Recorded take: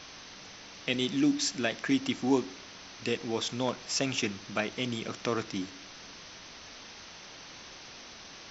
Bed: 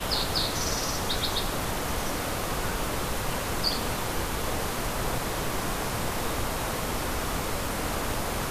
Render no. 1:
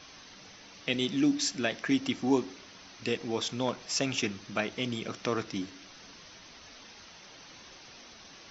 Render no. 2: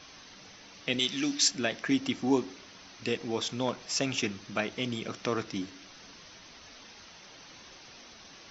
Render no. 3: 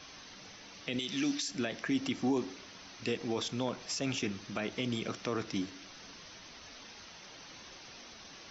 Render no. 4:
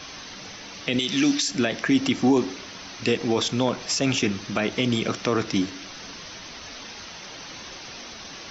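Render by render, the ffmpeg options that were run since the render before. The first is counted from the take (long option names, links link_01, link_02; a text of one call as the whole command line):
ffmpeg -i in.wav -af "afftdn=noise_reduction=6:noise_floor=-48" out.wav
ffmpeg -i in.wav -filter_complex "[0:a]asettb=1/sr,asplit=3[link_01][link_02][link_03];[link_01]atrim=end=0.994[link_04];[link_02]atrim=start=0.99:end=1.48,asetpts=PTS-STARTPTS,afade=type=in:duration=0.004:curve=qsin,afade=type=out:start_time=0.486:duration=0.004:curve=qsin,tiltshelf=frequency=970:gain=-7[link_05];[link_03]atrim=start=1.476[link_06];[link_04][link_05]acrossfade=duration=0.004:curve1=hsin:curve2=qsin[link_07];[link_07][link_06]acrossfade=duration=0.004:curve1=qsin:curve2=hsin" out.wav
ffmpeg -i in.wav -filter_complex "[0:a]alimiter=limit=-22.5dB:level=0:latency=1:release=33,acrossover=split=490[link_01][link_02];[link_02]acompressor=threshold=-35dB:ratio=3[link_03];[link_01][link_03]amix=inputs=2:normalize=0" out.wav
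ffmpeg -i in.wav -af "volume=11.5dB" out.wav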